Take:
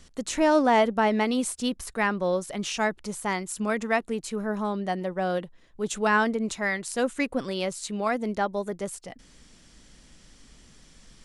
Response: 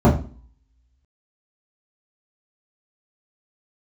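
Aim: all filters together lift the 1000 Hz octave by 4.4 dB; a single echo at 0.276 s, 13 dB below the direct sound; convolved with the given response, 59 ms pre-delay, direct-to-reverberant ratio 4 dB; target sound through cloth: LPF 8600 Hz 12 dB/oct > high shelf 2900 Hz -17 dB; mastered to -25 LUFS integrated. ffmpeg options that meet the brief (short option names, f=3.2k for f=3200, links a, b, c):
-filter_complex "[0:a]equalizer=f=1k:t=o:g=7.5,aecho=1:1:276:0.224,asplit=2[a][b];[1:a]atrim=start_sample=2205,adelay=59[c];[b][c]afir=irnorm=-1:irlink=0,volume=-26.5dB[d];[a][d]amix=inputs=2:normalize=0,lowpass=8.6k,highshelf=f=2.9k:g=-17,volume=-5.5dB"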